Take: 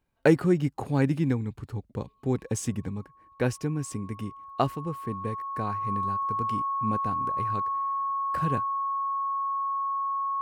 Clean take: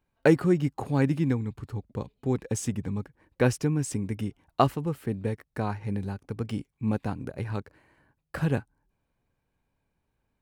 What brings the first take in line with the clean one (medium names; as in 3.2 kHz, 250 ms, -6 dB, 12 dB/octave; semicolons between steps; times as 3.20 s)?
band-stop 1.1 kHz, Q 30; gain correction +3.5 dB, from 2.89 s